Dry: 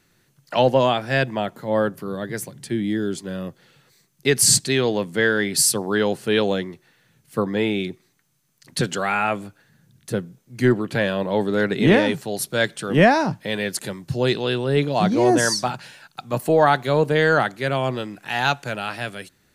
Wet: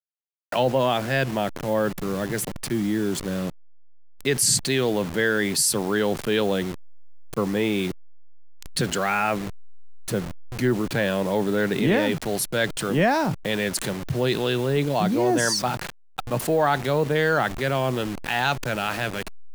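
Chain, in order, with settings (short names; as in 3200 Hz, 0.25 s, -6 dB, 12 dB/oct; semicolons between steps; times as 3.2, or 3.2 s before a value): level-crossing sampler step -33.5 dBFS; fast leveller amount 50%; gain -6.5 dB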